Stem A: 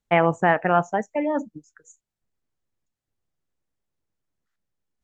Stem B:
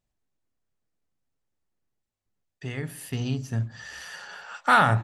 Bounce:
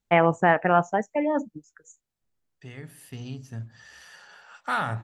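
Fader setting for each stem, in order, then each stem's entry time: −0.5, −8.5 decibels; 0.00, 0.00 seconds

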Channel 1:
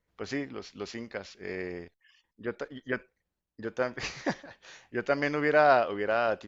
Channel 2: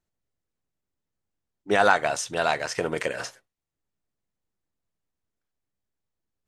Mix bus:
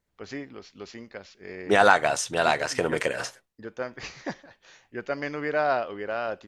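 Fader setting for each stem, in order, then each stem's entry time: −3.0, +1.5 decibels; 0.00, 0.00 seconds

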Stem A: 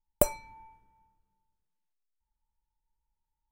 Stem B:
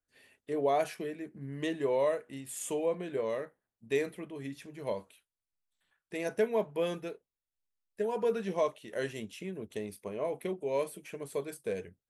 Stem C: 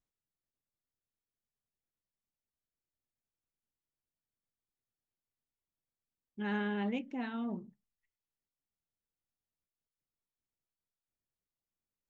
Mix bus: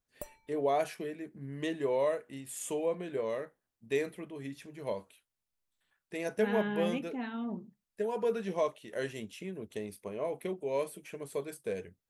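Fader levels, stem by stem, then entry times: −20.0, −1.0, +0.5 decibels; 0.00, 0.00, 0.00 seconds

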